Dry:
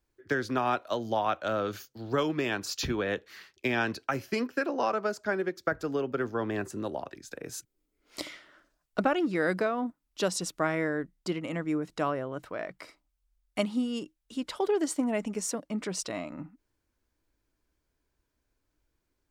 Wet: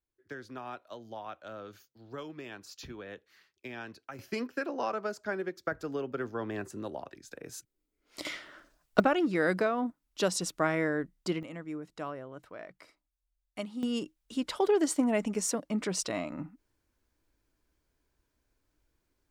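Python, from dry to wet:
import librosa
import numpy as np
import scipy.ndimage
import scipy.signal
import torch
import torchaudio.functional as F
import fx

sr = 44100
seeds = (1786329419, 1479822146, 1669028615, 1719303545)

y = fx.gain(x, sr, db=fx.steps((0.0, -14.0), (4.19, -4.5), (8.25, 6.5), (9.0, 0.0), (11.43, -9.0), (13.83, 1.5)))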